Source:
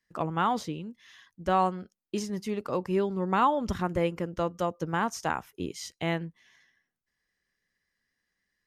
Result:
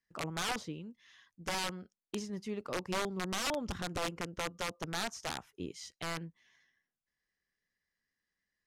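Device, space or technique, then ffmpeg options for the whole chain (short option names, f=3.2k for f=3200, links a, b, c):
overflowing digital effects unit: -af "aeval=exprs='(mod(11.2*val(0)+1,2)-1)/11.2':c=same,lowpass=9.3k,volume=-7dB"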